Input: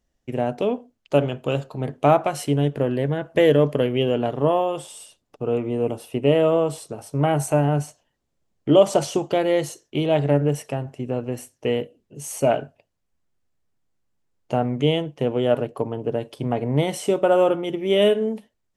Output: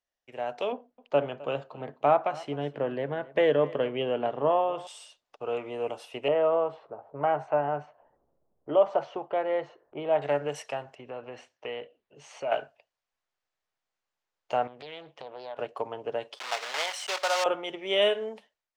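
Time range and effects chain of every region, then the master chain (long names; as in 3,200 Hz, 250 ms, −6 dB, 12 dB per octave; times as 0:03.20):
0:00.72–0:04.87: low-pass filter 1,600 Hz 6 dB per octave + parametric band 200 Hz +8 dB 1.6 octaves + single-tap delay 260 ms −20 dB
0:06.28–0:10.22: low-pass that shuts in the quiet parts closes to 390 Hz, open at −17 dBFS + low-pass filter 1,400 Hz + upward compression, threshold −36 dBFS
0:10.95–0:12.52: low-pass filter 3,300 Hz + downward compressor 2.5 to 1, threshold −26 dBFS
0:14.67–0:15.59: high-shelf EQ 9,400 Hz −12 dB + downward compressor 5 to 1, threshold −32 dBFS + highs frequency-modulated by the lows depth 0.58 ms
0:16.37–0:17.46: one scale factor per block 3 bits + high-pass filter 810 Hz
whole clip: three-way crossover with the lows and the highs turned down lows −21 dB, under 550 Hz, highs −21 dB, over 6,800 Hz; automatic gain control gain up to 8.5 dB; level −8.5 dB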